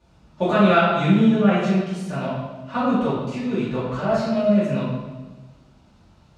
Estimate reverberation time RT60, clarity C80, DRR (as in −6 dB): 1.2 s, 2.0 dB, −13.5 dB